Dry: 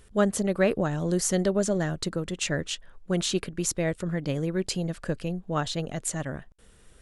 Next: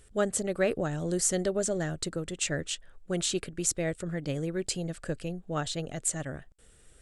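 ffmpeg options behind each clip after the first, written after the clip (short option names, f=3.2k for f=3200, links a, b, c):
-af "equalizer=f=200:t=o:w=0.33:g=-6,equalizer=f=1k:t=o:w=0.33:g=-7,equalizer=f=8k:t=o:w=0.33:g=8,volume=-3dB"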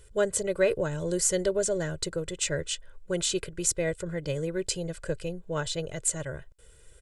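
-af "aecho=1:1:2:0.75"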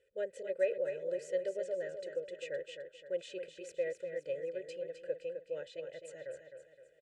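-filter_complex "[0:a]asplit=3[a][b][c];[a]bandpass=f=530:t=q:w=8,volume=0dB[d];[b]bandpass=f=1.84k:t=q:w=8,volume=-6dB[e];[c]bandpass=f=2.48k:t=q:w=8,volume=-9dB[f];[d][e][f]amix=inputs=3:normalize=0,asplit=2[g][h];[h]aecho=0:1:259|518|777|1036|1295:0.398|0.171|0.0736|0.0317|0.0136[i];[g][i]amix=inputs=2:normalize=0,volume=-2dB"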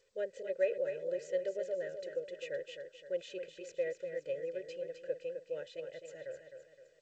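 -ar 16000 -c:a g722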